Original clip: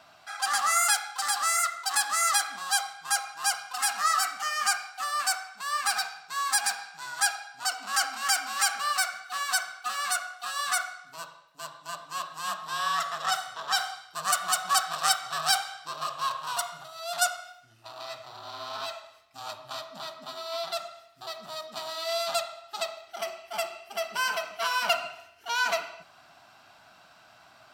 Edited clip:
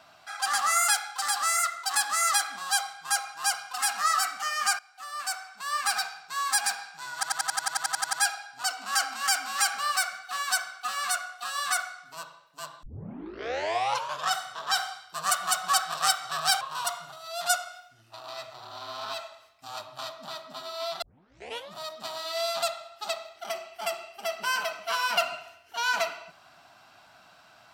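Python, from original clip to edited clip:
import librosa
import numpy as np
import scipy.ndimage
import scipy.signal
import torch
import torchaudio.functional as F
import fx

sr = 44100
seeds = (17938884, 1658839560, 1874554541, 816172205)

y = fx.edit(x, sr, fx.fade_in_from(start_s=4.79, length_s=0.96, floor_db=-18.5),
    fx.stutter(start_s=7.14, slice_s=0.09, count=12),
    fx.tape_start(start_s=11.84, length_s=1.47),
    fx.cut(start_s=15.62, length_s=0.71),
    fx.tape_start(start_s=20.74, length_s=0.74), tone=tone)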